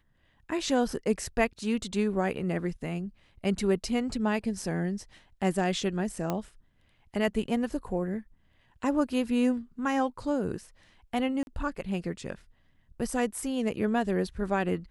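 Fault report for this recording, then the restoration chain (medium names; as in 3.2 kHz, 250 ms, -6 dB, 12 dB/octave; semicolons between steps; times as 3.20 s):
6.30 s: pop -16 dBFS
11.43–11.47 s: dropout 41 ms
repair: de-click; interpolate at 11.43 s, 41 ms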